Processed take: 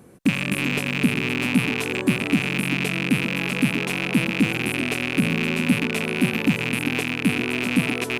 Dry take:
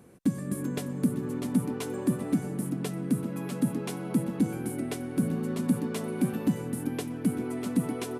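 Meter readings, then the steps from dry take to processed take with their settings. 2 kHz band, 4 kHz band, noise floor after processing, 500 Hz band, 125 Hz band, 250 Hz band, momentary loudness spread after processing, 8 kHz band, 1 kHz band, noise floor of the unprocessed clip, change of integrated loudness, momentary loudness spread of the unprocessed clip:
+23.0 dB, +19.0 dB, -30 dBFS, +5.5 dB, +6.0 dB, +5.5 dB, 2 LU, +6.5 dB, +9.0 dB, -37 dBFS, +8.5 dB, 5 LU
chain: rattling part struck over -38 dBFS, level -18 dBFS; gain +5.5 dB

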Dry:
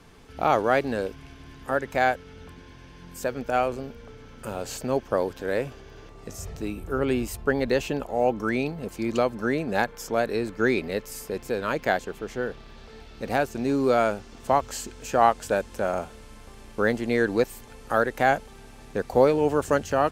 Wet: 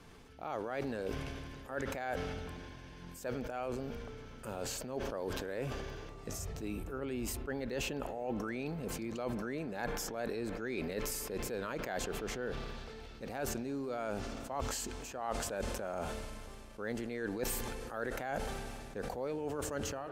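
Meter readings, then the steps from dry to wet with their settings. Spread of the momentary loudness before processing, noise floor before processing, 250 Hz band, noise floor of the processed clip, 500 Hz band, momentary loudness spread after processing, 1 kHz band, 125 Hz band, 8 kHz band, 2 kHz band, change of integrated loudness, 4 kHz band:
15 LU, -47 dBFS, -11.5 dB, -50 dBFS, -14.0 dB, 8 LU, -16.0 dB, -8.5 dB, -2.5 dB, -13.5 dB, -13.5 dB, -6.5 dB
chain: ending faded out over 0.80 s; reverse; compressor 10:1, threshold -31 dBFS, peak gain reduction 18.5 dB; reverse; spring tank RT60 3.3 s, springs 36 ms, chirp 50 ms, DRR 18 dB; sustainer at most 23 dB/s; gain -4.5 dB

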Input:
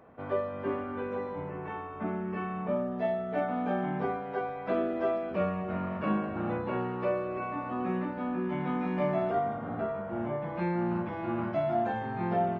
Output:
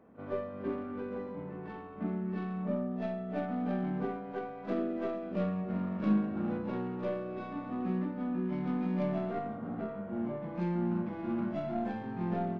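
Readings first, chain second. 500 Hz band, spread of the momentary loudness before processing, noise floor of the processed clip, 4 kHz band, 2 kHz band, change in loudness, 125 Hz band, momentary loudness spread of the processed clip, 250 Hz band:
-6.0 dB, 5 LU, -44 dBFS, n/a, -8.0 dB, -3.0 dB, -0.5 dB, 7 LU, +0.5 dB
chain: tracing distortion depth 0.095 ms; EQ curve 140 Hz 0 dB, 200 Hz +9 dB, 690 Hz -2 dB; on a send: reverse echo 39 ms -13.5 dB; on the sum: gain -6.5 dB

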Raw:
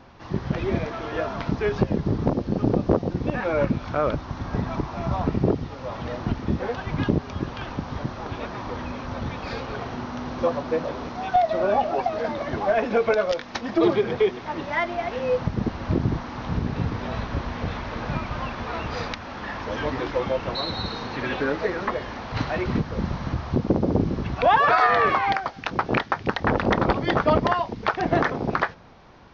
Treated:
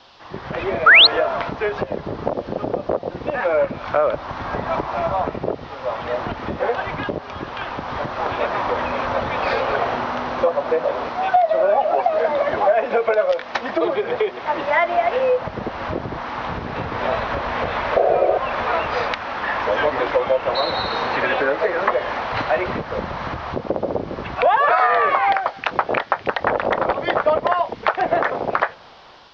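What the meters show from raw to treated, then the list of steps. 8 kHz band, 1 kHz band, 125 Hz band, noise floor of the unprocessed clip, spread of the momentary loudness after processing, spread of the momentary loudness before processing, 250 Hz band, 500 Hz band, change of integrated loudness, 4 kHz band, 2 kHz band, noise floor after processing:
n/a, +5.5 dB, -7.0 dB, -38 dBFS, 10 LU, 10 LU, -4.5 dB, +5.5 dB, +5.0 dB, +12.5 dB, +8.0 dB, -37 dBFS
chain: AGC gain up to 13 dB; painted sound noise, 17.96–18.38, 330–750 Hz -9 dBFS; band noise 2800–5500 Hz -50 dBFS; dynamic EQ 580 Hz, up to +6 dB, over -29 dBFS, Q 2.4; compressor 3:1, threshold -16 dBFS, peak gain reduction 11.5 dB; three-band isolator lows -14 dB, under 450 Hz, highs -14 dB, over 3600 Hz; painted sound rise, 0.86–1.07, 1200–4500 Hz -10 dBFS; gain +2 dB

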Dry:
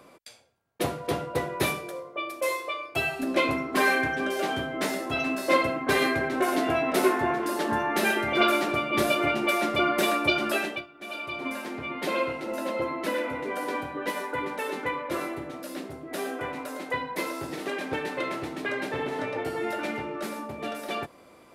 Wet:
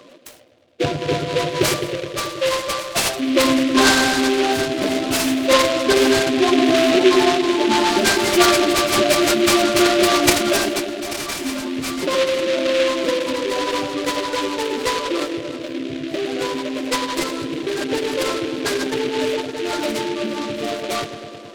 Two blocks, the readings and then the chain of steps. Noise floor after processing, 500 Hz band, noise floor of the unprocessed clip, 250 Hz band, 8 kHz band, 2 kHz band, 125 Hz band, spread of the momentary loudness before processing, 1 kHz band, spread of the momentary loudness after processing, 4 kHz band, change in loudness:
-35 dBFS, +10.0 dB, -53 dBFS, +11.0 dB, +16.0 dB, +5.5 dB, +7.0 dB, 11 LU, +6.5 dB, 11 LU, +13.5 dB, +9.0 dB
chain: spectral contrast raised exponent 2.3; dark delay 0.106 s, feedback 78%, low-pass 750 Hz, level -6.5 dB; noise-modulated delay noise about 2500 Hz, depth 0.11 ms; gain +8 dB

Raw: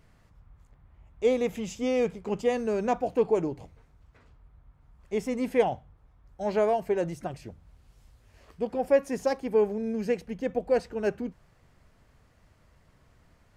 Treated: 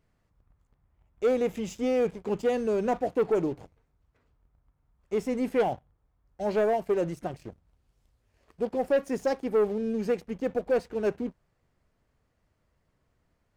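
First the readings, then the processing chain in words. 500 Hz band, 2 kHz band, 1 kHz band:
0.0 dB, -1.0 dB, -1.0 dB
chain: bell 380 Hz +3.5 dB 1.5 oct; sample leveller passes 2; gain -8.5 dB

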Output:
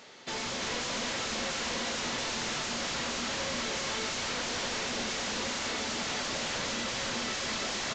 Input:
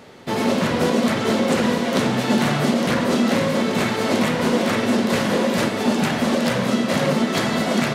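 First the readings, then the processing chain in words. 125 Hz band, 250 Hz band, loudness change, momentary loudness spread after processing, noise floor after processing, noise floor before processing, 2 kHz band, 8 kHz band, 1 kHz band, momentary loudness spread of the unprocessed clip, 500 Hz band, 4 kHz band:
-20.0 dB, -21.5 dB, -12.0 dB, 0 LU, -35 dBFS, -25 dBFS, -9.0 dB, -2.0 dB, -12.5 dB, 2 LU, -17.5 dB, -4.5 dB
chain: tilt +3.5 dB/oct; wavefolder -22 dBFS; echo 0.341 s -4 dB; gain -7.5 dB; µ-law 128 kbps 16000 Hz

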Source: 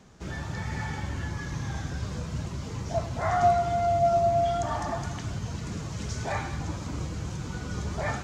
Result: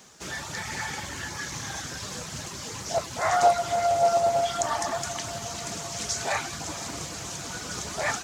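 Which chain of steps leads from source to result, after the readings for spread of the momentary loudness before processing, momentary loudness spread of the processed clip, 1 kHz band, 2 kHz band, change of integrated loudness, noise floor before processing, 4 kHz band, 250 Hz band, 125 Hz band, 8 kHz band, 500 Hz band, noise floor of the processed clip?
12 LU, 13 LU, +1.5 dB, +5.0 dB, +1.5 dB, -37 dBFS, +9.5 dB, -5.0 dB, -9.5 dB, +12.5 dB, +1.0 dB, -38 dBFS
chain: RIAA curve recording; reverb removal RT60 0.57 s; on a send: diffused feedback echo 0.466 s, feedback 69%, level -15.5 dB; on the sum: Doppler distortion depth 0.27 ms; gain +4 dB

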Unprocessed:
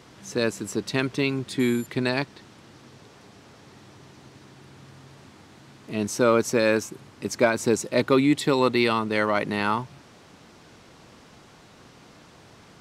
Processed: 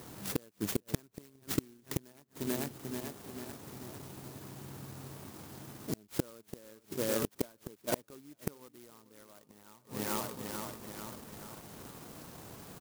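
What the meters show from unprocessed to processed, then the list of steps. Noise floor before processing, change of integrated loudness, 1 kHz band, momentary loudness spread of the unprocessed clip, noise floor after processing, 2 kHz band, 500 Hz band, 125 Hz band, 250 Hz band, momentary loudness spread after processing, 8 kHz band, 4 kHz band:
-52 dBFS, -16.0 dB, -16.5 dB, 11 LU, -68 dBFS, -19.0 dB, -16.0 dB, -9.5 dB, -14.0 dB, 18 LU, -7.0 dB, -13.0 dB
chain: feedback echo 0.441 s, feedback 53%, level -14 dB; transient shaper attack 0 dB, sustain -5 dB; flipped gate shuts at -18 dBFS, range -35 dB; clock jitter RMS 0.12 ms; gain +1.5 dB

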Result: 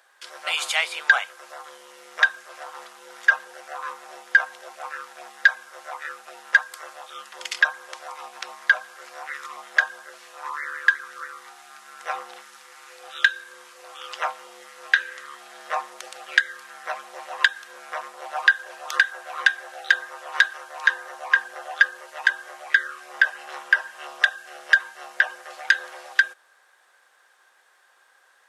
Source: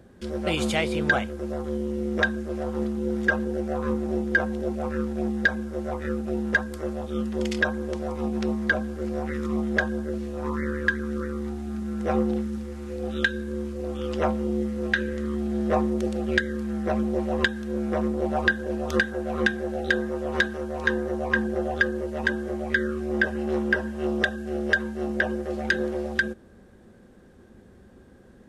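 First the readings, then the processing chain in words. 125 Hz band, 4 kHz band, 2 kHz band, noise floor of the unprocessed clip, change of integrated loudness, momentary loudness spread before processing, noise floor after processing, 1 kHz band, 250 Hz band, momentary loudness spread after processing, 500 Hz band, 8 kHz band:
under -40 dB, +6.0 dB, +6.0 dB, -51 dBFS, +3.5 dB, 7 LU, -60 dBFS, +2.0 dB, under -30 dB, 19 LU, -14.5 dB, +6.0 dB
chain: HPF 920 Hz 24 dB/oct; gain +6 dB

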